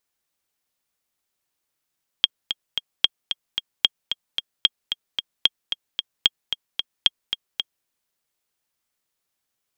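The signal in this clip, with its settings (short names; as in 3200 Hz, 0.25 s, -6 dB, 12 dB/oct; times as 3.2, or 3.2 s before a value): metronome 224 bpm, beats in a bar 3, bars 7, 3250 Hz, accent 9 dB -1.5 dBFS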